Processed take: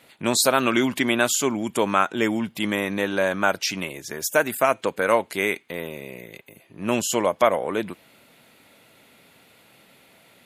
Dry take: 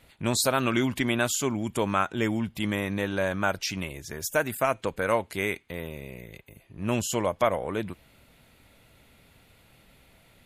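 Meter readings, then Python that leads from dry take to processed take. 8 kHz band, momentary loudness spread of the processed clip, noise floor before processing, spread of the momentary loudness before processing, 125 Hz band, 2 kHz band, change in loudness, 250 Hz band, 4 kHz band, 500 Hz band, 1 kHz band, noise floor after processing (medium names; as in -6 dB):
+5.5 dB, 12 LU, -59 dBFS, 12 LU, -3.5 dB, +5.5 dB, +5.0 dB, +3.5 dB, +5.5 dB, +5.5 dB, +5.5 dB, -56 dBFS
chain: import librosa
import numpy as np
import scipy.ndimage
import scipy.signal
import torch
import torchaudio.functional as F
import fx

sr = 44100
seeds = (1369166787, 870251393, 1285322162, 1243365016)

y = scipy.signal.sosfilt(scipy.signal.butter(2, 210.0, 'highpass', fs=sr, output='sos'), x)
y = F.gain(torch.from_numpy(y), 5.5).numpy()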